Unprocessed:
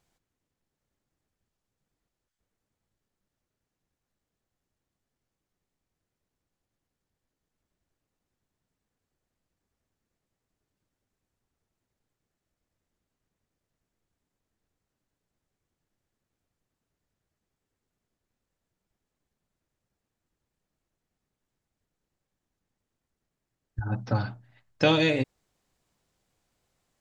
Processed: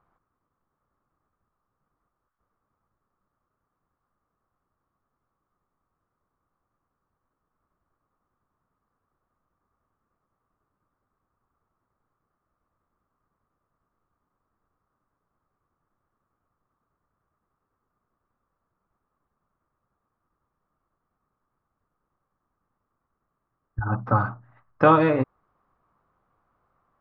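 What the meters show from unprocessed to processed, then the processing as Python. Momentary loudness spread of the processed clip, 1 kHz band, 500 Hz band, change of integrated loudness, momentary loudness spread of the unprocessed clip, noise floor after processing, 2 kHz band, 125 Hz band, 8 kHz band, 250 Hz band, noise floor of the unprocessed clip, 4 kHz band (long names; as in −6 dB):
15 LU, +12.0 dB, +5.0 dB, +4.5 dB, 15 LU, −82 dBFS, +1.5 dB, +3.0 dB, can't be measured, +3.5 dB, below −85 dBFS, −14.5 dB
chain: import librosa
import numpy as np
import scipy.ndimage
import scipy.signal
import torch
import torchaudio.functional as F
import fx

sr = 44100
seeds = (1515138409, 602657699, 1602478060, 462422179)

y = fx.lowpass_res(x, sr, hz=1200.0, q=6.1)
y = y * librosa.db_to_amplitude(3.0)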